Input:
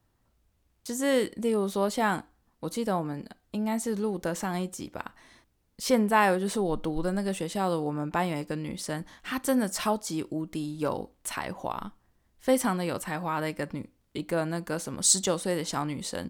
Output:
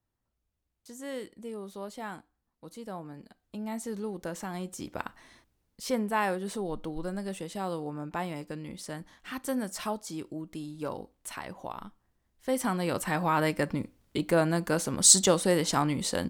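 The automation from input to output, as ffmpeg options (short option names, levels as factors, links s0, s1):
-af "volume=3.76,afade=t=in:st=2.77:d=1.09:silence=0.446684,afade=t=in:st=4.59:d=0.41:silence=0.421697,afade=t=out:st=5:d=0.87:silence=0.421697,afade=t=in:st=12.51:d=0.69:silence=0.316228"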